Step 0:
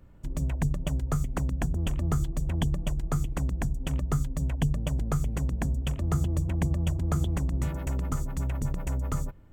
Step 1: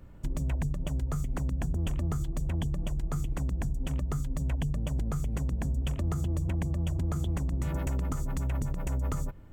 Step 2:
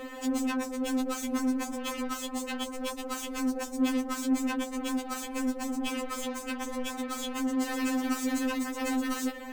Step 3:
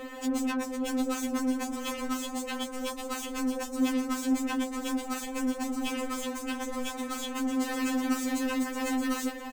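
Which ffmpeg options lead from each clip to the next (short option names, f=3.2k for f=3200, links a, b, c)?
-af "alimiter=level_in=2dB:limit=-24dB:level=0:latency=1:release=144,volume=-2dB,volume=3.5dB"
-filter_complex "[0:a]asplit=2[a][b];[b]highpass=f=720:p=1,volume=35dB,asoftclip=type=tanh:threshold=-22dB[c];[a][c]amix=inputs=2:normalize=0,lowpass=f=7k:p=1,volume=-6dB,afftfilt=real='re*3.46*eq(mod(b,12),0)':imag='im*3.46*eq(mod(b,12),0)':win_size=2048:overlap=0.75"
-af "aecho=1:1:652:0.316"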